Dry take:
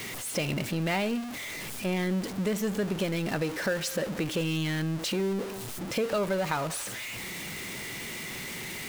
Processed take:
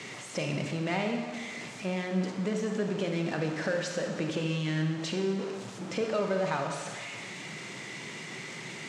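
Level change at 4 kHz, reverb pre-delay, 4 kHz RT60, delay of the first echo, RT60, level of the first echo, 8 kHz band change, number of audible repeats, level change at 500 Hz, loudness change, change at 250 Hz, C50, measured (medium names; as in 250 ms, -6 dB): -3.5 dB, 27 ms, 1.4 s, no echo, 1.7 s, no echo, -6.5 dB, no echo, -1.0 dB, -2.0 dB, -1.5 dB, 4.5 dB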